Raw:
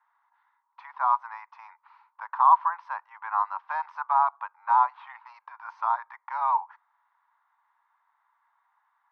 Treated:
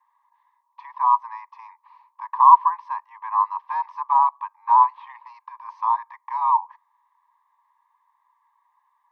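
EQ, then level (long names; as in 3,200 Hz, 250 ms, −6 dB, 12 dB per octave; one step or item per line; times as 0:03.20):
high-pass with resonance 1,000 Hz, resonance Q 4.9
Butterworth band-reject 1,400 Hz, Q 3
high-shelf EQ 2,400 Hz +11.5 dB
−7.5 dB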